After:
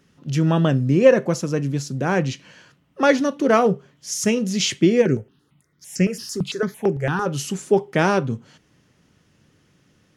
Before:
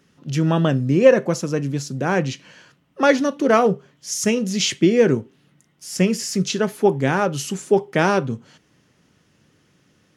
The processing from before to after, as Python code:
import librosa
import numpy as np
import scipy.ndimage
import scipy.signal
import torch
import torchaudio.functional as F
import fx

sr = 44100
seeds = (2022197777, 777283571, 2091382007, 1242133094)

y = fx.low_shelf(x, sr, hz=84.0, db=8.0)
y = fx.phaser_held(y, sr, hz=8.9, low_hz=630.0, high_hz=3500.0, at=(5.01, 7.25), fade=0.02)
y = y * 10.0 ** (-1.0 / 20.0)